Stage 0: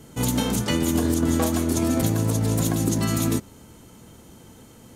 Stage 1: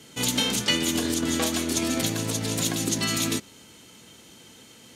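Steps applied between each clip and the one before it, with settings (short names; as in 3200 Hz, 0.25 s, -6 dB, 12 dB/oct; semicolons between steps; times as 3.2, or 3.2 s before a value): weighting filter D; gain -3.5 dB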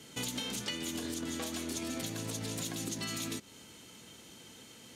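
in parallel at -9.5 dB: soft clip -28 dBFS, distortion -8 dB; on the sum: compressor, threshold -29 dBFS, peak gain reduction 11 dB; gain -6 dB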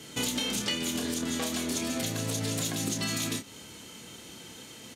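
doubler 29 ms -7 dB; gain +6 dB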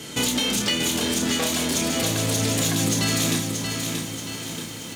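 in parallel at -3 dB: hard clip -33 dBFS, distortion -8 dB; on the sum: lo-fi delay 0.63 s, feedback 55%, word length 8-bit, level -5 dB; gain +4.5 dB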